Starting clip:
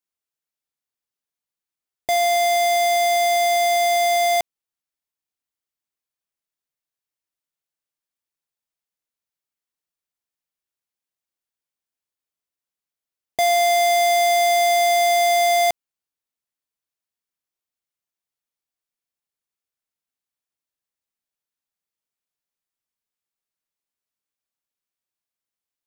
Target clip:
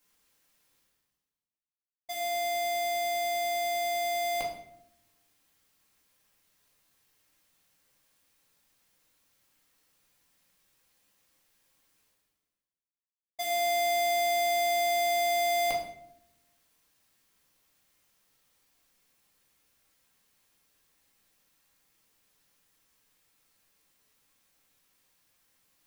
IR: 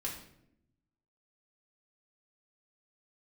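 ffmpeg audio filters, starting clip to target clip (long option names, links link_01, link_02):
-filter_complex "[0:a]agate=range=-33dB:threshold=-13dB:ratio=3:detection=peak,areverse,acompressor=mode=upward:threshold=-32dB:ratio=2.5,areverse[link_01];[1:a]atrim=start_sample=2205[link_02];[link_01][link_02]afir=irnorm=-1:irlink=0"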